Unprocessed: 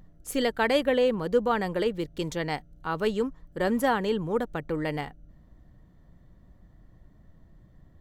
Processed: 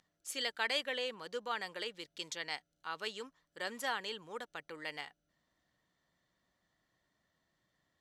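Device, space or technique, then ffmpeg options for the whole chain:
piezo pickup straight into a mixer: -af "lowpass=5100,aderivative,volume=5.5dB"

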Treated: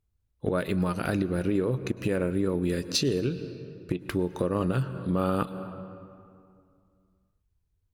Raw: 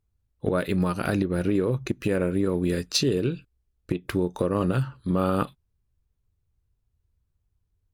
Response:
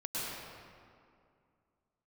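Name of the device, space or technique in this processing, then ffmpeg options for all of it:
ducked reverb: -filter_complex "[0:a]asplit=3[link_01][link_02][link_03];[1:a]atrim=start_sample=2205[link_04];[link_02][link_04]afir=irnorm=-1:irlink=0[link_05];[link_03]apad=whole_len=349874[link_06];[link_05][link_06]sidechaincompress=threshold=-30dB:ratio=4:attack=16:release=224,volume=-13dB[link_07];[link_01][link_07]amix=inputs=2:normalize=0,volume=-3dB"

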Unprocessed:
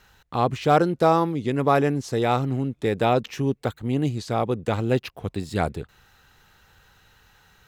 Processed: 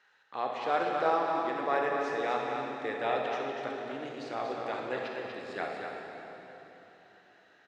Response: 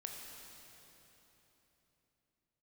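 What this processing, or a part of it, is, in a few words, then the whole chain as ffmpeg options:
station announcement: -filter_complex "[0:a]highpass=440,lowpass=4600,equalizer=frequency=1800:width_type=o:width=0.44:gain=7.5,aecho=1:1:64.14|242:0.282|0.501[link_01];[1:a]atrim=start_sample=2205[link_02];[link_01][link_02]afir=irnorm=-1:irlink=0,volume=-6dB"

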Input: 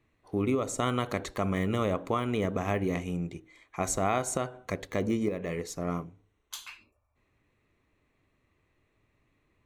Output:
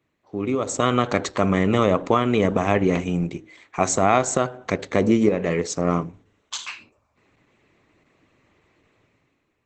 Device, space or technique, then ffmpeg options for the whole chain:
video call: -af "highpass=frequency=62:poles=1,highpass=100,dynaudnorm=framelen=120:gausssize=11:maxgain=13dB" -ar 48000 -c:a libopus -b:a 12k

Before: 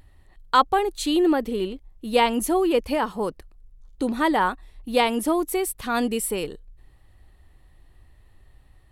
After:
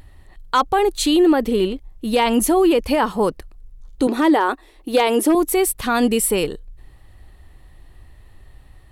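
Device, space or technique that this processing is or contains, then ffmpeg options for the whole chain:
clipper into limiter: -filter_complex "[0:a]asettb=1/sr,asplit=3[link_01][link_02][link_03];[link_01]atrim=end=4.074[link_04];[link_02]atrim=start=4.07:end=5.35,asetpts=PTS-STARTPTS,afade=type=in:duration=0.004:curve=qsin,afade=type=out:start_time=1.276:duration=0.004:curve=qsin,lowshelf=frequency=220:width_type=q:width=3:gain=-14[link_05];[link_03]atrim=start=5.346[link_06];[link_04][link_05]acrossfade=duration=0.004:curve1=hsin:curve2=qsin[link_07];[link_07][link_06]acrossfade=duration=0.004:curve1=qsin:curve2=hsin,asoftclip=type=hard:threshold=-9.5dB,alimiter=limit=-16.5dB:level=0:latency=1:release=29,volume=8dB"

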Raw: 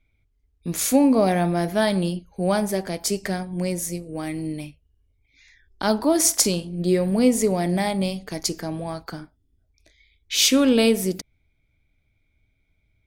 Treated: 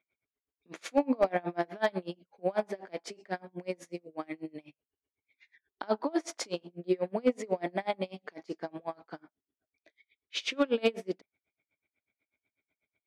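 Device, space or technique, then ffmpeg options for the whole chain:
helicopter radio: -af "highpass=370,lowpass=2600,aeval=exprs='val(0)*pow(10,-31*(0.5-0.5*cos(2*PI*8.1*n/s))/20)':channel_layout=same,asoftclip=type=hard:threshold=-16dB"

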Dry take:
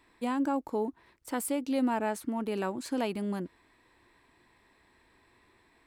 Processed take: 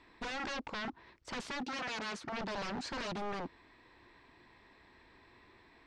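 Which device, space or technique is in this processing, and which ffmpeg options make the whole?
synthesiser wavefolder: -filter_complex "[0:a]aeval=exprs='0.0141*(abs(mod(val(0)/0.0141+3,4)-2)-1)':channel_layout=same,lowpass=frequency=5900:width=0.5412,lowpass=frequency=5900:width=1.3066,asettb=1/sr,asplit=3[link_01][link_02][link_03];[link_01]atrim=end=1.634[link_04];[link_02]atrim=start=1.63:end=2.34,asetpts=PTS-STARTPTS,afade=type=in:duration=0.004:curve=qsin,afade=type=out:start_time=0.706:duration=0.004:curve=qsin,highpass=frequency=120:poles=1[link_05];[link_03]atrim=start=2.336[link_06];[link_04][link_05]acrossfade=duration=0.004:curve1=hsin:curve2=qsin[link_07];[link_07][link_06]acrossfade=duration=0.004:curve1=qsin:curve2=hsin,volume=3dB"

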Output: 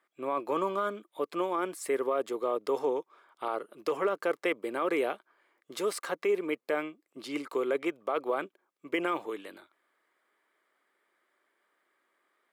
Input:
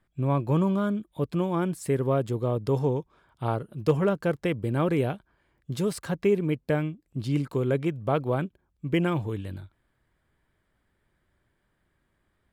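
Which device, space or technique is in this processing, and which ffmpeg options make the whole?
laptop speaker: -af "highpass=frequency=350:width=0.5412,highpass=frequency=350:width=1.3066,equalizer=frequency=1200:width_type=o:width=0.25:gain=8,equalizer=frequency=2100:width_type=o:width=0.28:gain=5.5,alimiter=limit=-20dB:level=0:latency=1:release=13"

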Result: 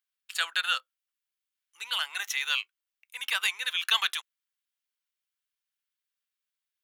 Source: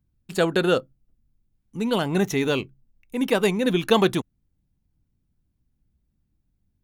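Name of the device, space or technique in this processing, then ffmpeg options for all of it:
headphones lying on a table: -af "highpass=frequency=1300:width=0.5412,highpass=frequency=1300:width=1.3066,equalizer=frequency=3100:width_type=o:width=0.53:gain=4.5"

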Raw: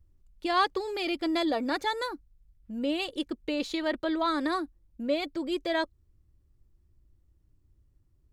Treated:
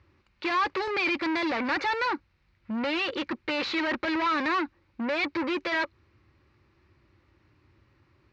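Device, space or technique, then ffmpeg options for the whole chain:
overdrive pedal into a guitar cabinet: -filter_complex "[0:a]asplit=2[link_01][link_02];[link_02]highpass=frequency=720:poles=1,volume=36dB,asoftclip=type=tanh:threshold=-13dB[link_03];[link_01][link_03]amix=inputs=2:normalize=0,lowpass=frequency=3900:poles=1,volume=-6dB,highpass=86,equalizer=frequency=170:width_type=q:width=4:gain=-9,equalizer=frequency=270:width_type=q:width=4:gain=-6,equalizer=frequency=440:width_type=q:width=4:gain=-7,equalizer=frequency=680:width_type=q:width=4:gain=-9,equalizer=frequency=2300:width_type=q:width=4:gain=4,equalizer=frequency=3300:width_type=q:width=4:gain=-8,lowpass=frequency=4200:width=0.5412,lowpass=frequency=4200:width=1.3066,volume=-4.5dB"

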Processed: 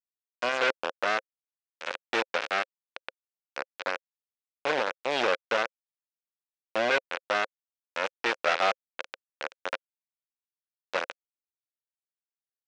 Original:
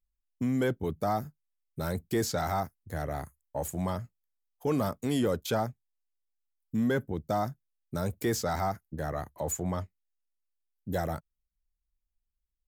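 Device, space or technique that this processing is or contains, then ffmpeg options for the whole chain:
hand-held game console: -filter_complex "[0:a]asplit=3[link_01][link_02][link_03];[link_01]afade=type=out:start_time=8.46:duration=0.02[link_04];[link_02]equalizer=frequency=250:width_type=o:width=1:gain=-8,equalizer=frequency=500:width_type=o:width=1:gain=8,equalizer=frequency=2000:width_type=o:width=1:gain=7,afade=type=in:start_time=8.46:duration=0.02,afade=type=out:start_time=9:duration=0.02[link_05];[link_03]afade=type=in:start_time=9:duration=0.02[link_06];[link_04][link_05][link_06]amix=inputs=3:normalize=0,acrusher=bits=3:mix=0:aa=0.000001,highpass=460,equalizer=frequency=530:width_type=q:width=4:gain=9,equalizer=frequency=1500:width_type=q:width=4:gain=6,equalizer=frequency=2500:width_type=q:width=4:gain=5,equalizer=frequency=4600:width_type=q:width=4:gain=-3,lowpass=frequency=5100:width=0.5412,lowpass=frequency=5100:width=1.3066"

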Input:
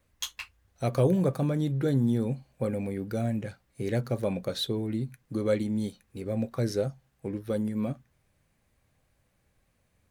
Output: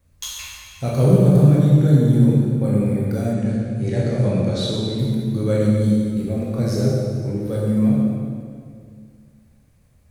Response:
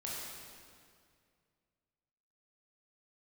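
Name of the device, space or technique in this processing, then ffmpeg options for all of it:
swimming-pool hall: -filter_complex "[1:a]atrim=start_sample=2205[link_01];[0:a][link_01]afir=irnorm=-1:irlink=0,highshelf=frequency=3100:gain=-8,asettb=1/sr,asplit=3[link_02][link_03][link_04];[link_02]atrim=end=3.334[link_05];[link_03]atrim=start=3.33:end=4.99,asetpts=PTS-STARTPTS,afade=type=in:duration=0.004:curve=qsin,afade=type=out:start_time=1.656:duration=0.004:curve=qsin,lowpass=frequency=8900:width=0.5412,lowpass=frequency=8900:width=1.3066[link_06];[link_04]atrim=start=4.986[link_07];[link_05][link_06]acrossfade=duration=0.004:curve1=hsin:curve2=qsin[link_08];[link_08][link_07]acrossfade=duration=0.004:curve1=qsin:curve2=hsin,bass=frequency=250:gain=8,treble=frequency=4000:gain=11,volume=5.5dB"

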